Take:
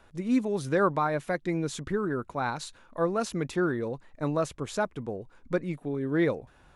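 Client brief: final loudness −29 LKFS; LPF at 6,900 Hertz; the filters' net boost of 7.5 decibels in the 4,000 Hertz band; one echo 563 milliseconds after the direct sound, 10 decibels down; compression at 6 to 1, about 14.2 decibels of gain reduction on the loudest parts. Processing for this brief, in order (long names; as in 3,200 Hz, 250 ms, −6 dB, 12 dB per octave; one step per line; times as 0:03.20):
low-pass filter 6,900 Hz
parametric band 4,000 Hz +9 dB
downward compressor 6 to 1, threshold −36 dBFS
single-tap delay 563 ms −10 dB
level +11 dB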